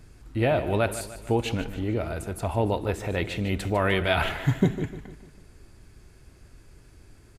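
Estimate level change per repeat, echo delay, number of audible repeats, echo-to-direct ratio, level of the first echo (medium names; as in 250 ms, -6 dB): -6.0 dB, 150 ms, 4, -12.0 dB, -13.0 dB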